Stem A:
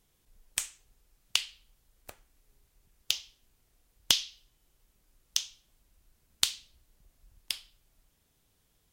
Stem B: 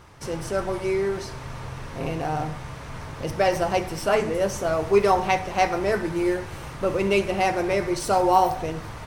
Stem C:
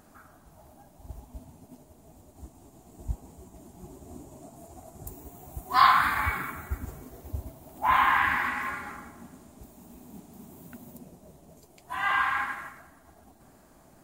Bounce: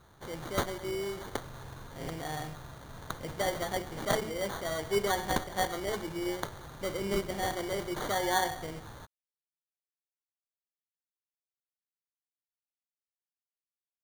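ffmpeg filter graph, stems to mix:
ffmpeg -i stem1.wav -i stem2.wav -filter_complex "[0:a]aexciter=amount=6.5:drive=9.5:freq=9100,acrusher=bits=5:dc=4:mix=0:aa=0.000001,aeval=exprs='val(0)*pow(10,-20*if(lt(mod(-1.1*n/s,1),2*abs(-1.1)/1000),1-mod(-1.1*n/s,1)/(2*abs(-1.1)/1000),(mod(-1.1*n/s,1)-2*abs(-1.1)/1000)/(1-2*abs(-1.1)/1000))/20)':channel_layout=same,volume=-1dB[link_01];[1:a]equalizer=frequency=8700:width=0.43:gain=9,volume=-11dB[link_02];[link_01][link_02]amix=inputs=2:normalize=0,acrusher=samples=17:mix=1:aa=0.000001,aeval=exprs='(mod(6.31*val(0)+1,2)-1)/6.31':channel_layout=same" out.wav

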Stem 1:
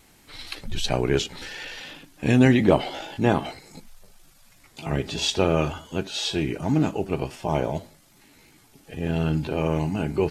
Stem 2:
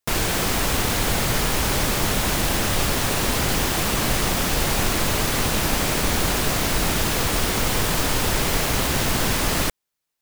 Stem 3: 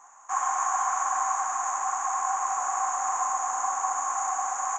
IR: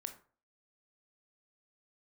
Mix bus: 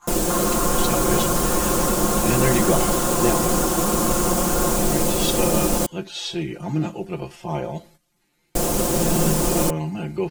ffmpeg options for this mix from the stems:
-filter_complex "[0:a]volume=-5dB[link_01];[1:a]equalizer=frequency=125:width_type=o:width=1:gain=-4,equalizer=frequency=250:width_type=o:width=1:gain=8,equalizer=frequency=500:width_type=o:width=1:gain=6,equalizer=frequency=2000:width_type=o:width=1:gain=-11,equalizer=frequency=4000:width_type=o:width=1:gain=-7,equalizer=frequency=8000:width_type=o:width=1:gain=6,acrusher=bits=3:mode=log:mix=0:aa=0.000001,volume=-3.5dB,asplit=3[link_02][link_03][link_04];[link_02]atrim=end=5.86,asetpts=PTS-STARTPTS,afade=type=out:start_time=5.856:duration=0.004:curve=hsin[link_05];[link_03]atrim=start=5.86:end=8.55,asetpts=PTS-STARTPTS,volume=0[link_06];[link_04]atrim=start=8.55,asetpts=PTS-STARTPTS,afade=type=in:duration=0.004:curve=hsin[link_07];[link_05][link_06][link_07]concat=n=3:v=0:a=1[link_08];[2:a]equalizer=frequency=1400:width_type=o:width=0.35:gain=11,acompressor=threshold=-30dB:ratio=6,volume=0.5dB[link_09];[link_01][link_08][link_09]amix=inputs=3:normalize=0,agate=range=-11dB:threshold=-52dB:ratio=16:detection=peak,aecho=1:1:5.7:0.9"

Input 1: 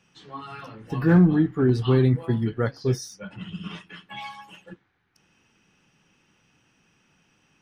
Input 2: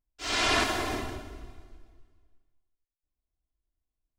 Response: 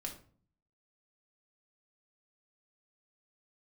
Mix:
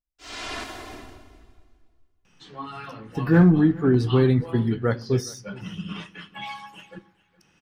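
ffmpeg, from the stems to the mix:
-filter_complex "[0:a]adelay=2250,volume=0.5dB,asplit=3[link_01][link_02][link_03];[link_02]volume=-12dB[link_04];[link_03]volume=-21dB[link_05];[1:a]volume=-10dB,asplit=3[link_06][link_07][link_08];[link_07]volume=-10dB[link_09];[link_08]volume=-19.5dB[link_10];[2:a]atrim=start_sample=2205[link_11];[link_04][link_09]amix=inputs=2:normalize=0[link_12];[link_12][link_11]afir=irnorm=-1:irlink=0[link_13];[link_05][link_10]amix=inputs=2:normalize=0,aecho=0:1:416|832|1248:1|0.15|0.0225[link_14];[link_01][link_06][link_13][link_14]amix=inputs=4:normalize=0"

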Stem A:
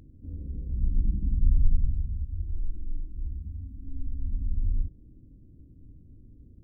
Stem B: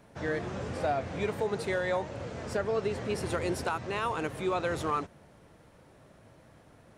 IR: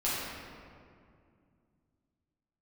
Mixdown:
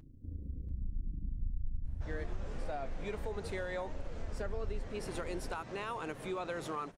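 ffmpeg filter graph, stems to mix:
-filter_complex "[0:a]flanger=delay=6.5:depth=6:regen=-51:speed=0.8:shape=triangular,tremolo=f=28:d=0.621,volume=2.5dB,asplit=2[link_01][link_02];[link_02]volume=-9.5dB[link_03];[1:a]highpass=frequency=130:width=0.5412,highpass=frequency=130:width=1.3066,adelay=1850,volume=-3.5dB[link_04];[link_03]aecho=0:1:689:1[link_05];[link_01][link_04][link_05]amix=inputs=3:normalize=0,acompressor=threshold=-37dB:ratio=2.5"

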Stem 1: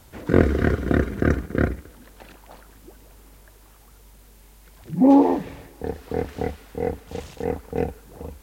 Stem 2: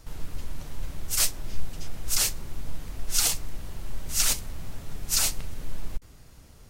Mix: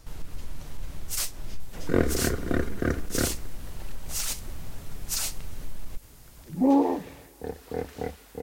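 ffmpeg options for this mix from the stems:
ffmpeg -i stem1.wav -i stem2.wav -filter_complex "[0:a]bass=frequency=250:gain=-3,treble=frequency=4000:gain=6,adelay=1600,volume=-5.5dB[link_01];[1:a]acompressor=threshold=-24dB:ratio=4,aeval=exprs='clip(val(0),-1,0.075)':channel_layout=same,volume=-1dB[link_02];[link_01][link_02]amix=inputs=2:normalize=0" out.wav

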